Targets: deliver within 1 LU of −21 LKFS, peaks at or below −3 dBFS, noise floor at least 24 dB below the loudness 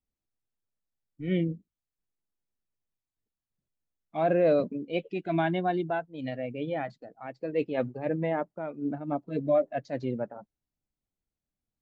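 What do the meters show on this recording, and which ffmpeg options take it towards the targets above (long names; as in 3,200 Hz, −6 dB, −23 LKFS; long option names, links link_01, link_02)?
integrated loudness −30.0 LKFS; sample peak −14.5 dBFS; target loudness −21.0 LKFS
→ -af "volume=9dB"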